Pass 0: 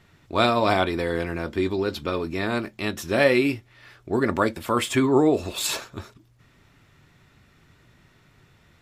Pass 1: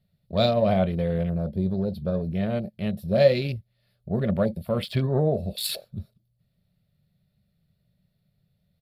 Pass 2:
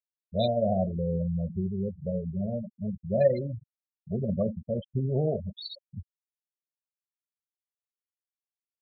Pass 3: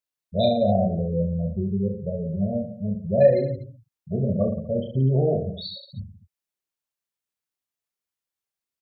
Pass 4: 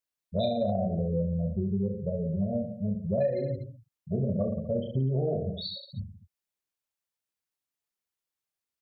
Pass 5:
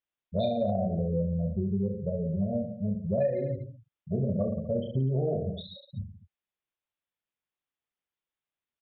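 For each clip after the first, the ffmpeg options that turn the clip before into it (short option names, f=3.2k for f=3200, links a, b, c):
-af "afwtdn=0.0251,firequalizer=gain_entry='entry(110,0);entry(190,8);entry(280,-19);entry(580,1);entry(920,-19);entry(2600,-12);entry(4400,0);entry(6300,-22);entry(10000,1);entry(14000,4)':delay=0.05:min_phase=1,volume=3.5dB"
-filter_complex "[0:a]asplit=2[a][b];[b]adelay=82,lowpass=f=840:p=1,volume=-14.5dB,asplit=2[c][d];[d]adelay=82,lowpass=f=840:p=1,volume=0.5,asplit=2[e][f];[f]adelay=82,lowpass=f=840:p=1,volume=0.5,asplit=2[g][h];[h]adelay=82,lowpass=f=840:p=1,volume=0.5,asplit=2[i][j];[j]adelay=82,lowpass=f=840:p=1,volume=0.5[k];[a][c][e][g][i][k]amix=inputs=6:normalize=0,afftfilt=real='re*gte(hypot(re,im),0.126)':imag='im*gte(hypot(re,im),0.126)':win_size=1024:overlap=0.75,volume=-4.5dB"
-af "aecho=1:1:30|67.5|114.4|173|246.2:0.631|0.398|0.251|0.158|0.1,volume=3.5dB"
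-af "acompressor=threshold=-23dB:ratio=5,volume=-1.5dB"
-af "aresample=8000,aresample=44100"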